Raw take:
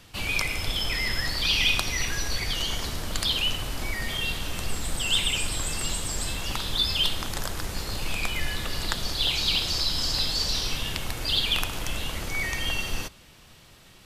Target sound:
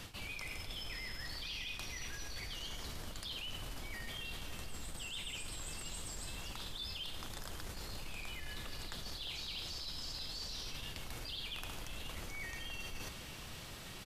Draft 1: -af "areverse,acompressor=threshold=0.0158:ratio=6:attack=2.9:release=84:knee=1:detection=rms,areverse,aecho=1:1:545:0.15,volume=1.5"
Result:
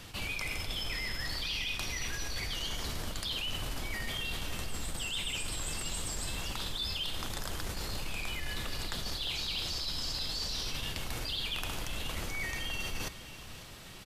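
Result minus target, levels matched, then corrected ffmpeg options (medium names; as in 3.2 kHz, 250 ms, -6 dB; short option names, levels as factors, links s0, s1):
compression: peak gain reduction -8 dB
-af "areverse,acompressor=threshold=0.00531:ratio=6:attack=2.9:release=84:knee=1:detection=rms,areverse,aecho=1:1:545:0.15,volume=1.5"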